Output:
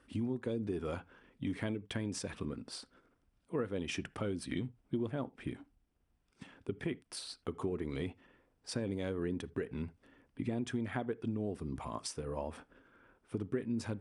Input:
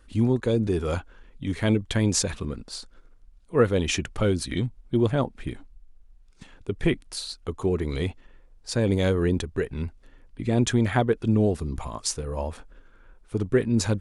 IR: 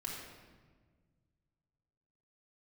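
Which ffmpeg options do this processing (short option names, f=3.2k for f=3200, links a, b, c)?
-filter_complex "[0:a]acompressor=threshold=-30dB:ratio=6,highpass=110,equalizer=f=260:t=q:w=4:g=4,equalizer=f=4.1k:t=q:w=4:g=-7,equalizer=f=6.8k:t=q:w=4:g=-10,lowpass=f=10k:w=0.5412,lowpass=f=10k:w=1.3066,asplit=2[a][b];[1:a]atrim=start_sample=2205,atrim=end_sample=3969,highshelf=f=4k:g=-8.5[c];[b][c]afir=irnorm=-1:irlink=0,volume=-14.5dB[d];[a][d]amix=inputs=2:normalize=0,volume=-4.5dB"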